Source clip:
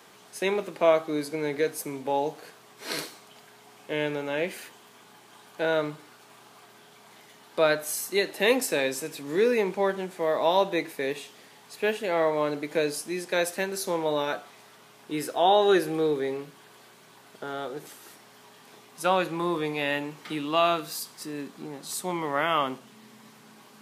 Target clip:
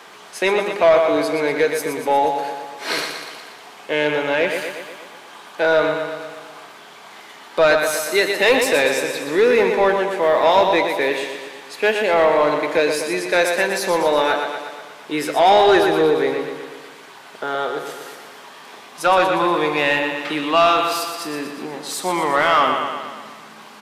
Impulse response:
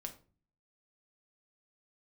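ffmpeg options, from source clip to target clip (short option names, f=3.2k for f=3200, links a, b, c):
-filter_complex "[0:a]aecho=1:1:120|240|360|480|600|720|840|960:0.422|0.249|0.147|0.0866|0.0511|0.0301|0.0178|0.0105,asplit=2[a][b];[b]highpass=f=720:p=1,volume=16dB,asoftclip=type=tanh:threshold=-7.5dB[c];[a][c]amix=inputs=2:normalize=0,lowpass=f=2.9k:p=1,volume=-6dB,volume=3.5dB"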